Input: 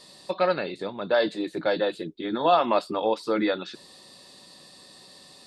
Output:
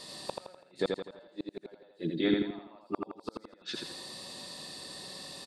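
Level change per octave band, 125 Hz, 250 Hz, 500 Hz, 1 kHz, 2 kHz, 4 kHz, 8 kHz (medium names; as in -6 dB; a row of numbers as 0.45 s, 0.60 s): -2.5 dB, -4.5 dB, -12.5 dB, -19.0 dB, -11.0 dB, -4.5 dB, no reading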